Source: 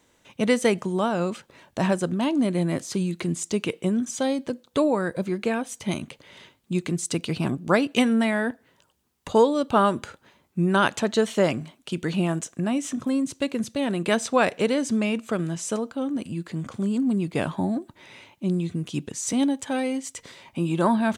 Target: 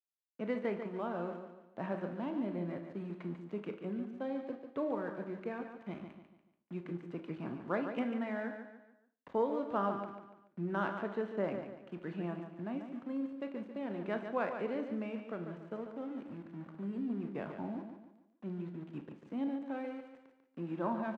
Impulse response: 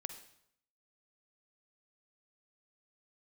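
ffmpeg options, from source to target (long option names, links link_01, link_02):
-filter_complex "[0:a]acrossover=split=3100[link_01][link_02];[link_02]acompressor=threshold=-39dB:ratio=4:attack=1:release=60[link_03];[link_01][link_03]amix=inputs=2:normalize=0,aeval=exprs='val(0)*gte(abs(val(0)),0.0188)':channel_layout=same,acrossover=split=150 2400:gain=0.2 1 0.158[link_04][link_05][link_06];[link_04][link_05][link_06]amix=inputs=3:normalize=0,adynamicsmooth=sensitivity=2:basefreq=5100,aecho=1:1:144|288|432|576:0.398|0.155|0.0606|0.0236[link_07];[1:a]atrim=start_sample=2205,asetrate=79380,aresample=44100[link_08];[link_07][link_08]afir=irnorm=-1:irlink=0,volume=-6dB"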